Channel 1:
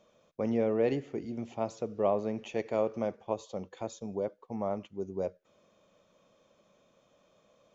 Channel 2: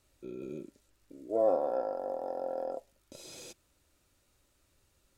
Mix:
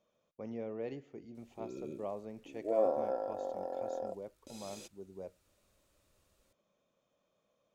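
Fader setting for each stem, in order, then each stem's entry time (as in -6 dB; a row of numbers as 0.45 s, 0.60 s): -12.5 dB, -3.0 dB; 0.00 s, 1.35 s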